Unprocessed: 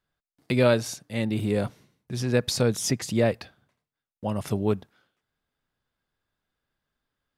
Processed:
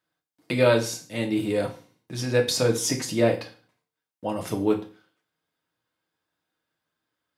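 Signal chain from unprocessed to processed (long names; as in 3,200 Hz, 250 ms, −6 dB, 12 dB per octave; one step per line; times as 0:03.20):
Bessel high-pass filter 180 Hz, order 2
convolution reverb RT60 0.40 s, pre-delay 3 ms, DRR 1.5 dB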